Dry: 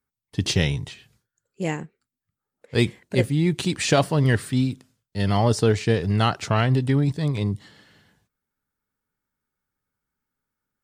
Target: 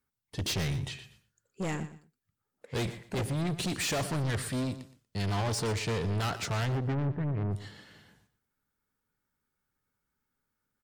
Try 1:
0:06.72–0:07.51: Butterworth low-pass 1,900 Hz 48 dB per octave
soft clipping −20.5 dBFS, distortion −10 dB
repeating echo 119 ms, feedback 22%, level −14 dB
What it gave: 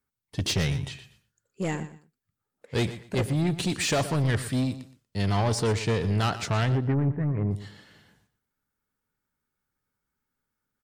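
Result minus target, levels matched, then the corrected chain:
soft clipping: distortion −5 dB
0:06.72–0:07.51: Butterworth low-pass 1,900 Hz 48 dB per octave
soft clipping −28.5 dBFS, distortion −5 dB
repeating echo 119 ms, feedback 22%, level −14 dB

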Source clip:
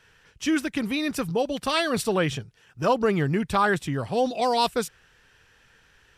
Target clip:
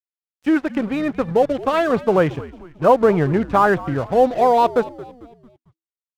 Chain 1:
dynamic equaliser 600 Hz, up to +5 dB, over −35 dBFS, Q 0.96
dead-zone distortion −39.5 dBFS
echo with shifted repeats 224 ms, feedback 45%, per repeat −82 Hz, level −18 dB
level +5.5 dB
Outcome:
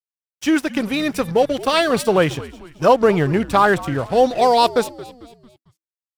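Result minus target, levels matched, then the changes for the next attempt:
2,000 Hz band +2.5 dB
add after dynamic equaliser: low-pass filter 1,700 Hz 12 dB per octave

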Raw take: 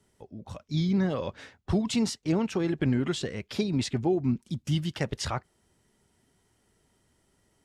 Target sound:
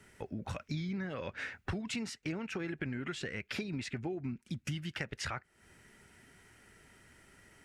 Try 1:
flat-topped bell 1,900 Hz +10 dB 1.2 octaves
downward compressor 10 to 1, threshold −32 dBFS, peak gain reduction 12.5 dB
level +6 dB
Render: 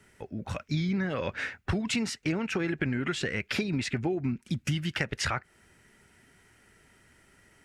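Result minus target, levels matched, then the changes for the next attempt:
downward compressor: peak gain reduction −8.5 dB
change: downward compressor 10 to 1, threshold −41.5 dBFS, peak gain reduction 21 dB

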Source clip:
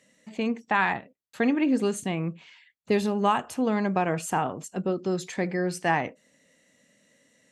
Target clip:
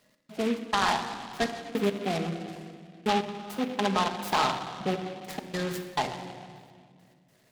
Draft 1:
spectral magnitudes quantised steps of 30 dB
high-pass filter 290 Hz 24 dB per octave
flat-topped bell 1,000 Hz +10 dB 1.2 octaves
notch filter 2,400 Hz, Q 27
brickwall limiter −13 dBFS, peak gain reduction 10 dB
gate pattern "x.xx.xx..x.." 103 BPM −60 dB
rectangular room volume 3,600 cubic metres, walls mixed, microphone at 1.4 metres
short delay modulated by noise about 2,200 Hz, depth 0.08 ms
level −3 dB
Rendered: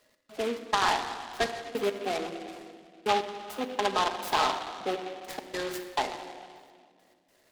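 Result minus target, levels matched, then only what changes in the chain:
250 Hz band −6.5 dB
remove: high-pass filter 290 Hz 24 dB per octave

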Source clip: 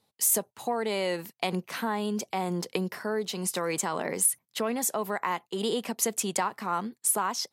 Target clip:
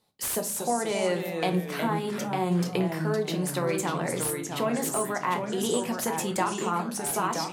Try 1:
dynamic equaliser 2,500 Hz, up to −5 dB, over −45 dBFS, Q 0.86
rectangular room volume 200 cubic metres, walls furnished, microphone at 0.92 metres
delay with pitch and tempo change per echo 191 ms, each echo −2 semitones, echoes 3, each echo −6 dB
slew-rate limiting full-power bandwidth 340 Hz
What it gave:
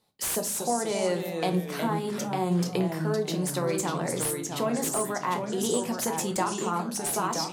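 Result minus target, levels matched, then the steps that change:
2,000 Hz band −2.5 dB
change: dynamic equaliser 5,900 Hz, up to −5 dB, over −45 dBFS, Q 0.86

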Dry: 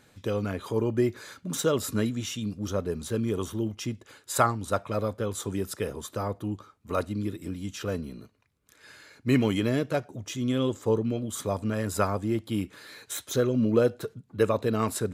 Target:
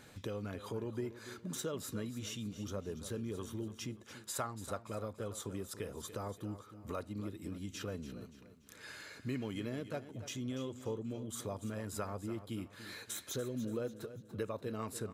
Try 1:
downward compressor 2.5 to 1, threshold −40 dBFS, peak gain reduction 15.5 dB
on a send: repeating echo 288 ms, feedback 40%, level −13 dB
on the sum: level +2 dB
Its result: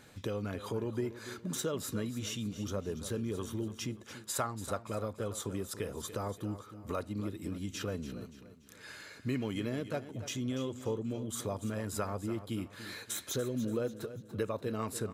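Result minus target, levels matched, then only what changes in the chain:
downward compressor: peak gain reduction −4.5 dB
change: downward compressor 2.5 to 1, threshold −47.5 dBFS, peak gain reduction 20 dB

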